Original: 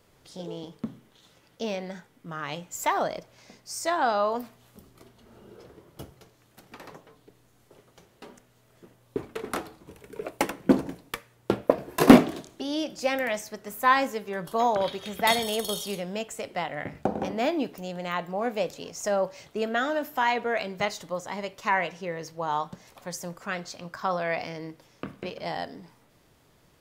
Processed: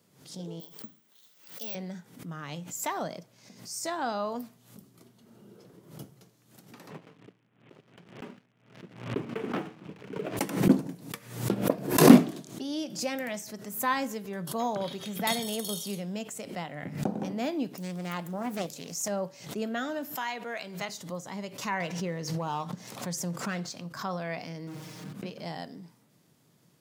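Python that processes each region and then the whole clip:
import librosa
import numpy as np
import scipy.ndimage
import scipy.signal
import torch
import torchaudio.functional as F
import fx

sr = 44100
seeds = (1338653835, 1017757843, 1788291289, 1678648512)

y = fx.chain(x, sr, fx.highpass(hz=1200.0, slope=6),
    fx.resample_bad(factor=2, down='filtered', up='zero_stuff'), at=(0.6, 1.75))
y = fx.chain(y, sr, fx.cvsd(bps=16000),
    fx.highpass(hz=97.0, slope=12),
    fx.leveller(passes=2), at=(6.9, 10.37))
y = fx.chain(y, sr, fx.high_shelf(hz=6600.0, db=12.0),
    fx.doppler_dist(depth_ms=0.56), at=(17.8, 19.08))
y = fx.chain(y, sr, fx.low_shelf(hz=450.0, db=-11.5),
    fx.band_squash(depth_pct=40), at=(20.15, 20.89))
y = fx.chain(y, sr, fx.high_shelf(hz=12000.0, db=-10.0),
    fx.leveller(passes=1),
    fx.pre_swell(db_per_s=57.0), at=(21.8, 23.78))
y = fx.chain(y, sr, fx.clip_1bit(),
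    fx.high_shelf(hz=6200.0, db=-12.0),
    fx.comb(ms=6.4, depth=0.9), at=(24.67, 25.13))
y = scipy.signal.sosfilt(scipy.signal.butter(4, 150.0, 'highpass', fs=sr, output='sos'), y)
y = fx.bass_treble(y, sr, bass_db=14, treble_db=7)
y = fx.pre_swell(y, sr, db_per_s=100.0)
y = F.gain(torch.from_numpy(y), -8.0).numpy()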